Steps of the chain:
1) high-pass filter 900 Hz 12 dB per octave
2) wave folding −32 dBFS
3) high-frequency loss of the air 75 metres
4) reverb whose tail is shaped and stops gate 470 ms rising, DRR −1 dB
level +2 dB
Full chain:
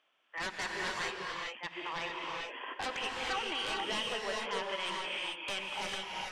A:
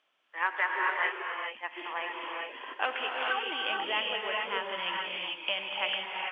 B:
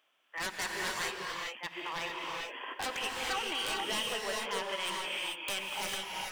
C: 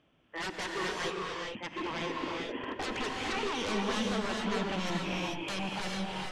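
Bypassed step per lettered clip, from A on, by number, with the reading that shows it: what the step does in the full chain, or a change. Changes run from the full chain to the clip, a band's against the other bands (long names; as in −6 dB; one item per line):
2, change in crest factor +5.5 dB
3, 8 kHz band +6.5 dB
1, change in integrated loudness +2.0 LU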